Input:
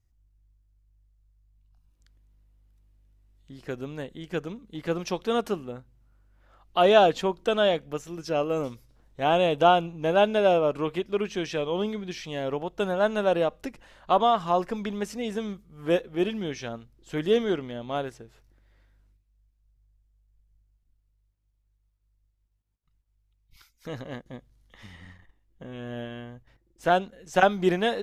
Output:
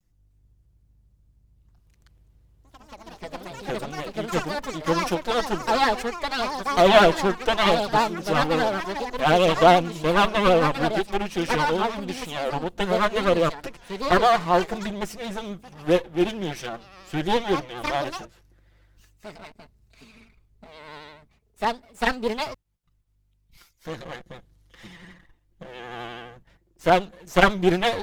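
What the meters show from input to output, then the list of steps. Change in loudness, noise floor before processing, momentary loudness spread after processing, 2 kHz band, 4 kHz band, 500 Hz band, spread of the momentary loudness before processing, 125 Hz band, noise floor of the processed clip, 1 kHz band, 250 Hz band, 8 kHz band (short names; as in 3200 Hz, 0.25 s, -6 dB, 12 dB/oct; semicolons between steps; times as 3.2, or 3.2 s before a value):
+3.5 dB, -71 dBFS, 18 LU, +7.0 dB, +6.0 dB, +2.0 dB, 18 LU, +5.0 dB, -65 dBFS, +5.0 dB, +4.0 dB, n/a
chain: minimum comb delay 5.8 ms; echoes that change speed 0.299 s, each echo +4 st, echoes 3, each echo -6 dB; vibrato 12 Hz 67 cents; gain +4 dB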